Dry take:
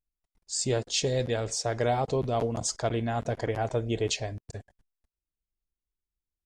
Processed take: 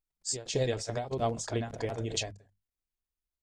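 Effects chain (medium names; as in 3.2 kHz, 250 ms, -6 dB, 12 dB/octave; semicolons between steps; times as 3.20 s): hum notches 50/100/150/200 Hz; granular stretch 0.53×, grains 156 ms; endings held to a fixed fall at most 130 dB/s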